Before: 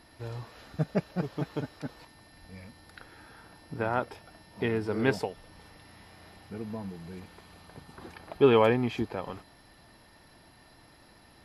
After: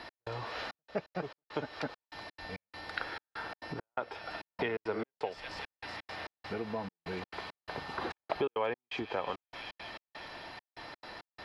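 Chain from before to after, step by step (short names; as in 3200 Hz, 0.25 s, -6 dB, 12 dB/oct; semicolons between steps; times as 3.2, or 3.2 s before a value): thin delay 0.188 s, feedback 76%, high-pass 3400 Hz, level -12 dB; compressor 8:1, threshold -40 dBFS, peak gain reduction 23.5 dB; step gate "x..xxxxx..xx.x" 170 bpm -60 dB; three-band isolator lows -13 dB, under 400 Hz, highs -24 dB, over 5200 Hz; gain +13.5 dB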